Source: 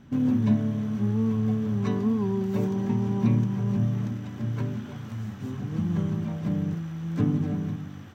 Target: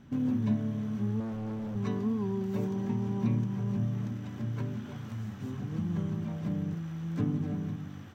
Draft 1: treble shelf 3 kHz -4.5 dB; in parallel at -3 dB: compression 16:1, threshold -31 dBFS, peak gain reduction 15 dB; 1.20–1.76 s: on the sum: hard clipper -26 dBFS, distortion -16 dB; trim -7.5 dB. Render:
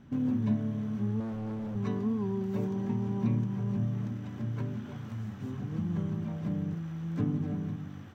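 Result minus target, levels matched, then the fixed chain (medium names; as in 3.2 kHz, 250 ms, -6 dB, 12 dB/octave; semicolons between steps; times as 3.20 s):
8 kHz band -3.5 dB
in parallel at -3 dB: compression 16:1, threshold -31 dBFS, peak gain reduction 15 dB; 1.20–1.76 s: on the sum: hard clipper -26 dBFS, distortion -16 dB; trim -7.5 dB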